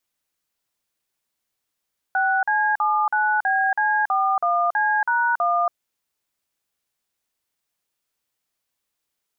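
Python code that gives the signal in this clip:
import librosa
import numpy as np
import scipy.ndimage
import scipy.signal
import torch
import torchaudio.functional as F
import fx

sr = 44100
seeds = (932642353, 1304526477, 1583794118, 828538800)

y = fx.dtmf(sr, digits='6C79BC41C#1', tone_ms=280, gap_ms=45, level_db=-20.0)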